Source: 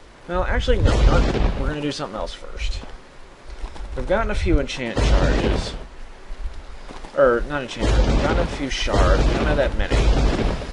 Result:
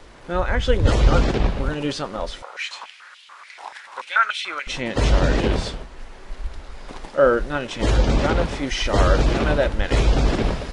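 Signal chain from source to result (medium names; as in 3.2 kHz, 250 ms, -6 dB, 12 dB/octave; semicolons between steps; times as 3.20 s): 2.42–4.67 s: step-sequenced high-pass 6.9 Hz 820–3100 Hz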